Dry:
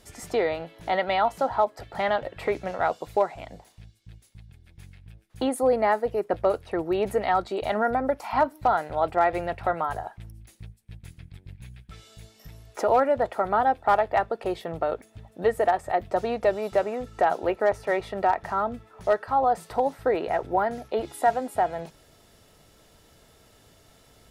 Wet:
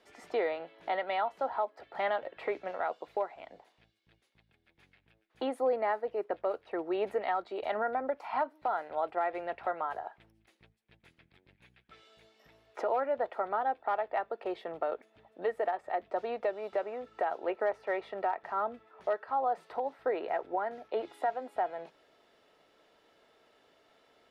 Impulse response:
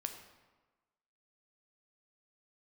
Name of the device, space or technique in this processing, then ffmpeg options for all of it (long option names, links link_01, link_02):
DJ mixer with the lows and highs turned down: -filter_complex "[0:a]acrossover=split=270 4000:gain=0.0708 1 0.112[link_01][link_02][link_03];[link_01][link_02][link_03]amix=inputs=3:normalize=0,alimiter=limit=-16.5dB:level=0:latency=1:release=378,volume=-5dB"